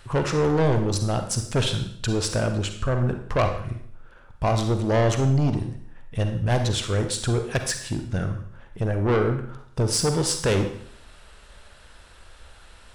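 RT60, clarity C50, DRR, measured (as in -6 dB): 0.65 s, 7.5 dB, 6.0 dB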